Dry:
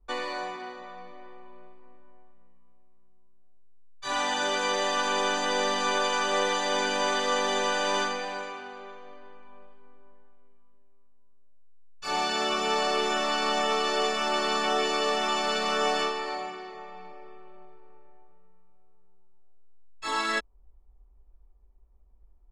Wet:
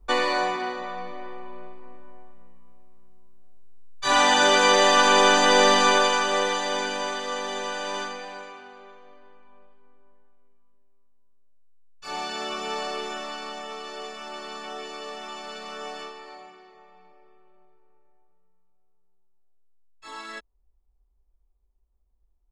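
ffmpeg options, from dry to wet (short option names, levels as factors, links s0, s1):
-af "volume=2.99,afade=t=out:st=5.73:d=0.51:silence=0.473151,afade=t=out:st=6.24:d=0.95:silence=0.446684,afade=t=out:st=12.78:d=0.82:silence=0.473151"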